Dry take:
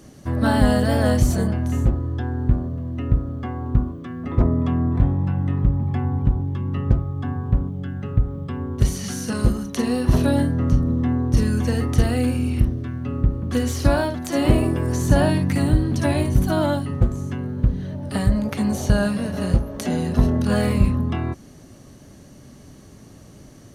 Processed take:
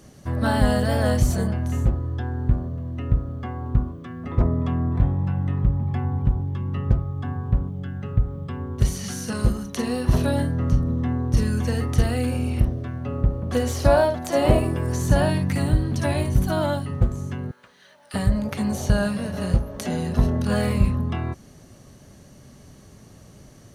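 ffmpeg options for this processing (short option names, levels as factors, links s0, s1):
-filter_complex "[0:a]asettb=1/sr,asplit=3[s0][s1][s2];[s0]atrim=end=12.324[s3];[s1]atrim=start=12.32:end=14.59,asetpts=PTS-STARTPTS,afade=t=in:d=0.004:c=qsin,afade=t=out:st=2.266:d=0.004:c=qsin,equalizer=f=650:w=1.3:g=8[s4];[s2]atrim=start=14.586[s5];[s3][s4]acrossfade=d=0.004:c1=hsin:c2=qsin[s6];[s6][s5]acrossfade=d=0.004:c1=qsin:c2=hsin,asettb=1/sr,asplit=3[s7][s8][s9];[s7]atrim=end=17.514[s10];[s8]atrim=start=17.51:end=18.14,asetpts=PTS-STARTPTS,afade=t=in:d=0.004:c=qsin,afade=t=out:st=0.626:d=0.004:c=qsin,highpass=1300[s11];[s9]atrim=start=18.136[s12];[s10][s11]acrossfade=d=0.004:c1=hsin:c2=qsin[s13];[s13][s12]acrossfade=d=0.004:c1=qsin:c2=hsin,equalizer=f=290:t=o:w=0.55:g=-5.5,volume=0.841"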